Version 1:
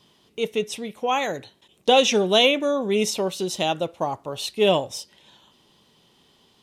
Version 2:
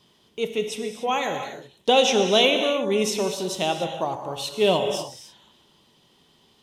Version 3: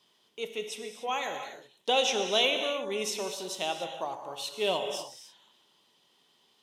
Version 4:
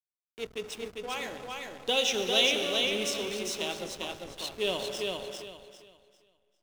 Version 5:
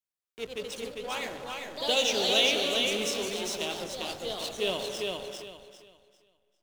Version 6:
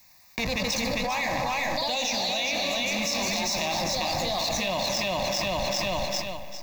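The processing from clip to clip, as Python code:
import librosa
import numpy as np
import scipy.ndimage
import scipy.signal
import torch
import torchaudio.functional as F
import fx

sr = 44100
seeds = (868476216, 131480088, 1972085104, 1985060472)

y1 = fx.rev_gated(x, sr, seeds[0], gate_ms=320, shape='flat', drr_db=5.5)
y1 = y1 * librosa.db_to_amplitude(-1.5)
y2 = fx.highpass(y1, sr, hz=610.0, slope=6)
y2 = y2 * librosa.db_to_amplitude(-5.5)
y3 = fx.peak_eq(y2, sr, hz=840.0, db=-10.0, octaves=1.2)
y3 = fx.backlash(y3, sr, play_db=-36.0)
y3 = fx.echo_feedback(y3, sr, ms=399, feedback_pct=26, wet_db=-3.5)
y3 = y3 * librosa.db_to_amplitude(2.0)
y4 = fx.echo_pitch(y3, sr, ms=138, semitones=2, count=2, db_per_echo=-6.0)
y5 = fx.fixed_phaser(y4, sr, hz=2100.0, stages=8)
y5 = fx.env_flatten(y5, sr, amount_pct=100)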